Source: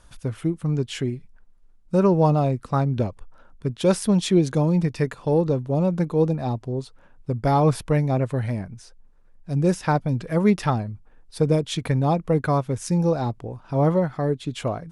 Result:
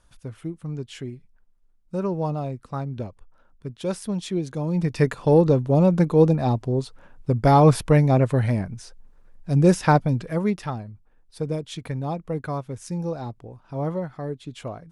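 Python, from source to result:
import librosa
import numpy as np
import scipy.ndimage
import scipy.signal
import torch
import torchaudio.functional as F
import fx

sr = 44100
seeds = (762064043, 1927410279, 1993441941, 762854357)

y = fx.gain(x, sr, db=fx.line((4.57, -8.0), (5.04, 4.0), (9.96, 4.0), (10.62, -7.5)))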